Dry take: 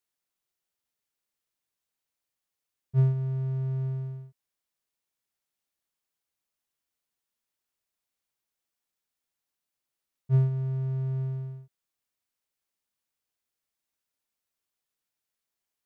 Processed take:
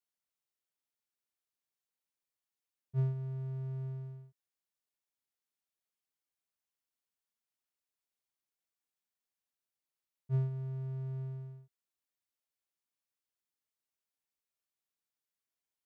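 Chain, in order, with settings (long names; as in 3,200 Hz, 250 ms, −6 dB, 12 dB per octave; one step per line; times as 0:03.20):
low-shelf EQ 93 Hz −5 dB
level −7.5 dB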